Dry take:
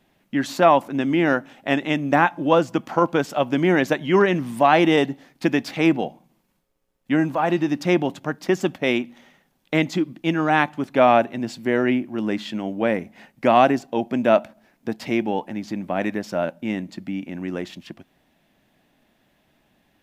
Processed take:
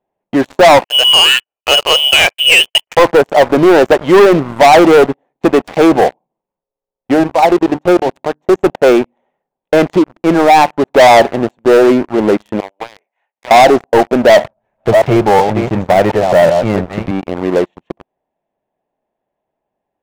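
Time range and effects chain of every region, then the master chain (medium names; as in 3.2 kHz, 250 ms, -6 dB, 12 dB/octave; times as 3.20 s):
0.84–2.97 s: bass shelf 440 Hz +7 dB + gate -31 dBFS, range -30 dB + frequency inversion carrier 3.2 kHz
7.14–8.66 s: level held to a coarse grid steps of 10 dB + hum notches 50/100/150/200/250/300 Hz
12.60–13.51 s: high-pass 1.4 kHz + compression 20:1, threshold -34 dBFS
14.29–17.11 s: chunks repeated in reverse 365 ms, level -8.5 dB + resonant low shelf 170 Hz +12 dB, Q 1.5 + tape noise reduction on one side only encoder only
whole clip: local Wiener filter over 9 samples; high-order bell 620 Hz +12 dB; waveshaping leveller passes 5; trim -8.5 dB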